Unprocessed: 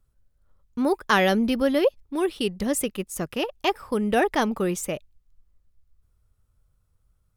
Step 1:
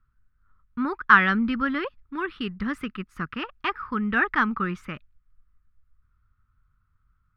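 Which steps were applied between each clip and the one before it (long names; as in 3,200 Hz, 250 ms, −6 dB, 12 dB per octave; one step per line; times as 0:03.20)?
drawn EQ curve 240 Hz 0 dB, 640 Hz −18 dB, 1,300 Hz +13 dB, 3,100 Hz −5 dB, 4,800 Hz −11 dB, 7,400 Hz −28 dB
level −1 dB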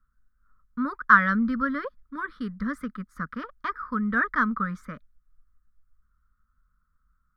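phaser with its sweep stopped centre 540 Hz, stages 8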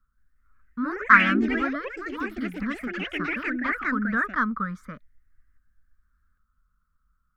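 delay with pitch and tempo change per echo 180 ms, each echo +3 semitones, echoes 3
level −1 dB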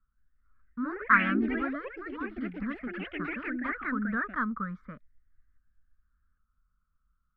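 high-frequency loss of the air 380 metres
level −4 dB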